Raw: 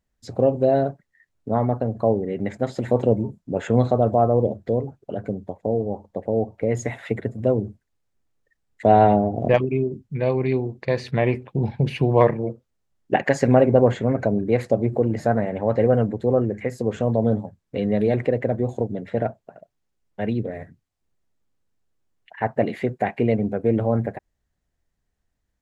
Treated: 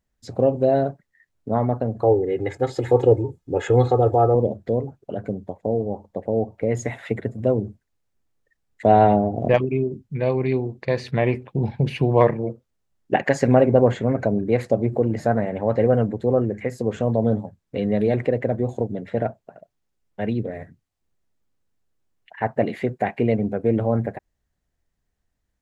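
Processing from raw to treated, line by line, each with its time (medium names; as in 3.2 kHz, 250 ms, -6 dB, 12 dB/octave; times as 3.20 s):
2.02–4.35 s: comb 2.4 ms, depth 98%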